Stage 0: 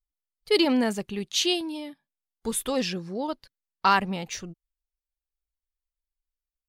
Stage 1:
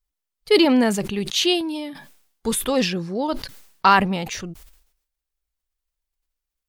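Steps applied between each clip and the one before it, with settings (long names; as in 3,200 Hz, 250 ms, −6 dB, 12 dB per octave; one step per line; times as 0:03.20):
dynamic equaliser 6,600 Hz, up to −5 dB, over −39 dBFS, Q 0.84
level that may fall only so fast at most 84 dB per second
level +6 dB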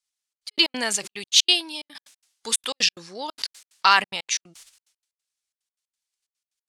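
meter weighting curve ITU-R 468
gate pattern "xxxx.x.x." 182 BPM −60 dB
level −4 dB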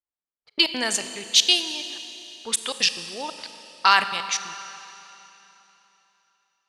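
low-pass that shuts in the quiet parts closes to 850 Hz, open at −20 dBFS
four-comb reverb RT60 3.3 s, combs from 28 ms, DRR 10 dB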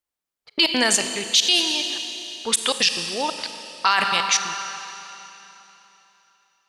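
brickwall limiter −13.5 dBFS, peak gain reduction 11.5 dB
level +7.5 dB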